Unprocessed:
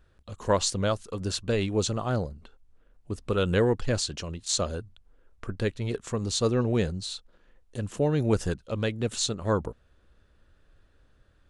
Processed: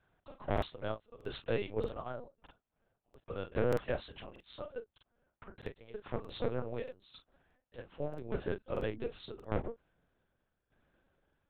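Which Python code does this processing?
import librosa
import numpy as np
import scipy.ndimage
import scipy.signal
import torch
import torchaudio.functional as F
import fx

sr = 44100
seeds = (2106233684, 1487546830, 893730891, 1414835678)

y = fx.ladder_highpass(x, sr, hz=fx.steps((0.0, 340.0), (8.16, 190.0)), resonance_pct=20)
y = fx.tremolo_shape(y, sr, shape='saw_down', hz=0.84, depth_pct=85)
y = np.clip(y, -10.0 ** (-30.0 / 20.0), 10.0 ** (-30.0 / 20.0))
y = fx.doubler(y, sr, ms=37.0, db=-10.0)
y = fx.lpc_vocoder(y, sr, seeds[0], excitation='pitch_kept', order=8)
y = fx.lowpass(y, sr, hz=2700.0, slope=6)
y = fx.buffer_crackle(y, sr, first_s=0.53, period_s=0.63, block=2048, kind='repeat')
y = y * librosa.db_to_amplitude(3.0)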